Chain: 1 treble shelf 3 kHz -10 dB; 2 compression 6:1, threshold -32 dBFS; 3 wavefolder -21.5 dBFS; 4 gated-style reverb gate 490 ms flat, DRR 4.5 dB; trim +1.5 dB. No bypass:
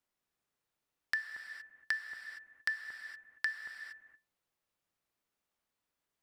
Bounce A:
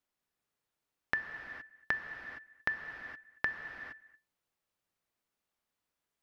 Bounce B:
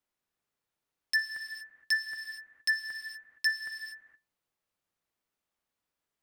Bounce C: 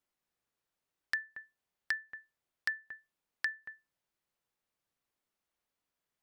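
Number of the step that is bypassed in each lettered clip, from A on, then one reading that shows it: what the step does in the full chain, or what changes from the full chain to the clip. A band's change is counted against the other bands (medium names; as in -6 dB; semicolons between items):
3, distortion -7 dB; 2, momentary loudness spread change +2 LU; 4, momentary loudness spread change +2 LU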